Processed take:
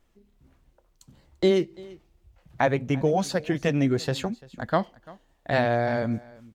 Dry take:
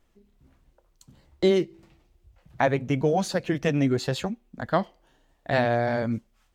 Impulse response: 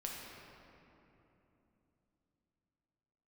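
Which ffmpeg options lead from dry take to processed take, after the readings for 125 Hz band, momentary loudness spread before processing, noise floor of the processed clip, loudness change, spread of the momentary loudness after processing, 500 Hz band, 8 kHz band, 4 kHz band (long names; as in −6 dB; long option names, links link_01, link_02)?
0.0 dB, 11 LU, −66 dBFS, 0.0 dB, 12 LU, 0.0 dB, 0.0 dB, 0.0 dB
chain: -af "aecho=1:1:342:0.0794"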